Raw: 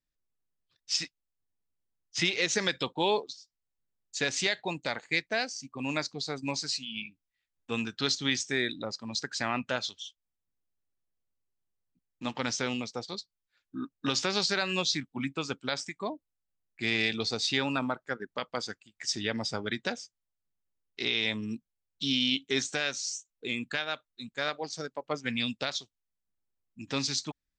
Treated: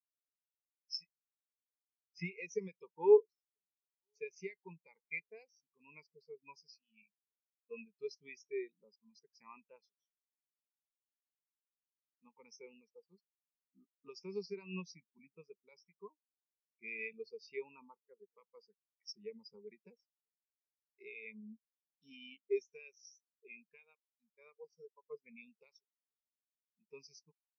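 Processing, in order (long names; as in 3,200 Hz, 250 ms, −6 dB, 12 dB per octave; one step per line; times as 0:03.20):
EQ curve with evenly spaced ripples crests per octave 0.81, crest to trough 13 dB
slap from a distant wall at 170 metres, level −27 dB
every bin expanded away from the loudest bin 2.5 to 1
level −5.5 dB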